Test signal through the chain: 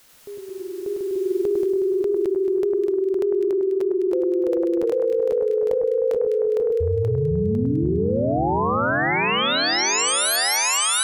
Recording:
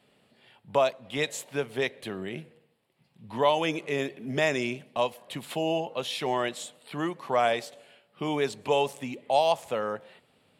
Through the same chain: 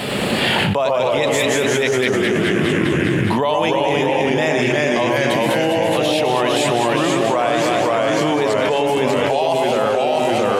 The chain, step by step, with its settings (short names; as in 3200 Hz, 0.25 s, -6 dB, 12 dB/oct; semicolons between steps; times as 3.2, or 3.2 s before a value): echoes that change speed 94 ms, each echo -1 st, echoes 3; echo with dull and thin repeats by turns 0.102 s, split 1700 Hz, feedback 73%, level -4 dB; fast leveller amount 100%; gain +1 dB